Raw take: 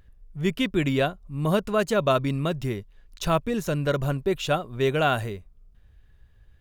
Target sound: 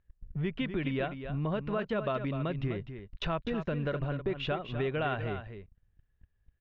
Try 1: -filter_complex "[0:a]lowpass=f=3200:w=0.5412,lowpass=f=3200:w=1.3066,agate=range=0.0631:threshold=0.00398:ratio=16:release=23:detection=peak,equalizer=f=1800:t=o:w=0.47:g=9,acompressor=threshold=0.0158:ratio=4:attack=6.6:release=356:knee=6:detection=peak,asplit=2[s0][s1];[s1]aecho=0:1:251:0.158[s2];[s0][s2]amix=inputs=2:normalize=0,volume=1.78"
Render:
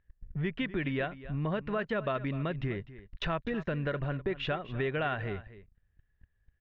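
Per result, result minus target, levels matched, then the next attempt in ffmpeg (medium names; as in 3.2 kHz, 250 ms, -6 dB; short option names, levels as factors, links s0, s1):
echo-to-direct -6.5 dB; 2 kHz band +3.0 dB
-filter_complex "[0:a]lowpass=f=3200:w=0.5412,lowpass=f=3200:w=1.3066,agate=range=0.0631:threshold=0.00398:ratio=16:release=23:detection=peak,equalizer=f=1800:t=o:w=0.47:g=9,acompressor=threshold=0.0158:ratio=4:attack=6.6:release=356:knee=6:detection=peak,asplit=2[s0][s1];[s1]aecho=0:1:251:0.335[s2];[s0][s2]amix=inputs=2:normalize=0,volume=1.78"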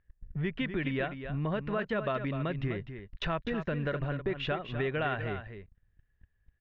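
2 kHz band +3.0 dB
-filter_complex "[0:a]lowpass=f=3200:w=0.5412,lowpass=f=3200:w=1.3066,agate=range=0.0631:threshold=0.00398:ratio=16:release=23:detection=peak,equalizer=f=1800:t=o:w=0.47:g=2,acompressor=threshold=0.0158:ratio=4:attack=6.6:release=356:knee=6:detection=peak,asplit=2[s0][s1];[s1]aecho=0:1:251:0.335[s2];[s0][s2]amix=inputs=2:normalize=0,volume=1.78"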